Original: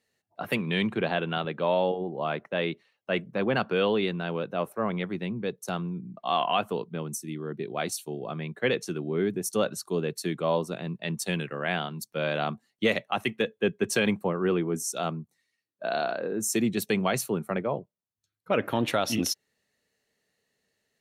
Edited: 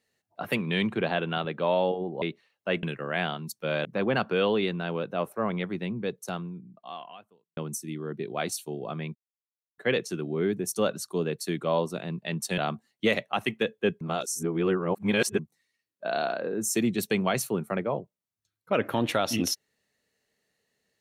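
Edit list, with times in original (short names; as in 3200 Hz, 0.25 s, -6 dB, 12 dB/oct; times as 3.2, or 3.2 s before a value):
2.22–2.64 cut
5.56–6.97 fade out quadratic
8.55 insert silence 0.63 s
11.35–12.37 move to 3.25
13.8–15.18 reverse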